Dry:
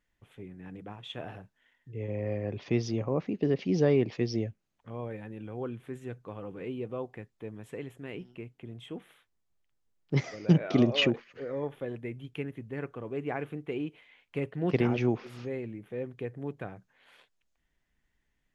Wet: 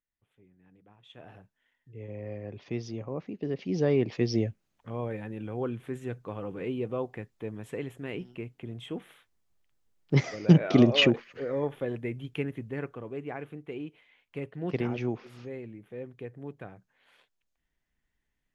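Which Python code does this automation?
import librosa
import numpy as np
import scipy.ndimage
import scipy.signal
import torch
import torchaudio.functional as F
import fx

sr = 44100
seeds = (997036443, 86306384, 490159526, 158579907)

y = fx.gain(x, sr, db=fx.line((0.86, -16.5), (1.38, -6.0), (3.42, -6.0), (4.36, 4.0), (12.58, 4.0), (13.31, -4.0)))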